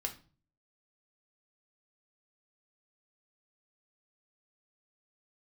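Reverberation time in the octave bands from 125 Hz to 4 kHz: 0.65, 0.55, 0.40, 0.35, 0.30, 0.35 s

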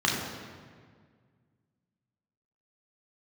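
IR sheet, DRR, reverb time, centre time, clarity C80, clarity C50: -3.5 dB, 1.8 s, 74 ms, 3.5 dB, 2.0 dB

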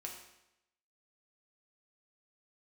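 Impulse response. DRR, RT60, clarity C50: -0.5 dB, 0.85 s, 5.0 dB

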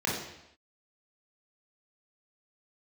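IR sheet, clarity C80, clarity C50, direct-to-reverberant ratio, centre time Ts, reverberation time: 6.0 dB, 2.0 dB, -4.5 dB, 52 ms, not exponential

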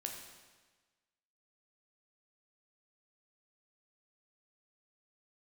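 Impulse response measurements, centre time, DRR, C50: 44 ms, 1.5 dB, 4.5 dB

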